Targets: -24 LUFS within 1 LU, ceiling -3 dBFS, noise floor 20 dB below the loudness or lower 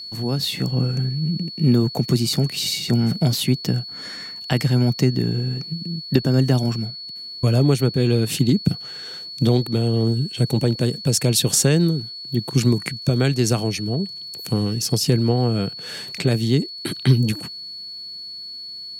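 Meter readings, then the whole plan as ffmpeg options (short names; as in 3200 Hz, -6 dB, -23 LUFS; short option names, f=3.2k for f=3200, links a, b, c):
steady tone 4400 Hz; tone level -32 dBFS; loudness -21.0 LUFS; peak -3.5 dBFS; loudness target -24.0 LUFS
-> -af "bandreject=f=4.4k:w=30"
-af "volume=-3dB"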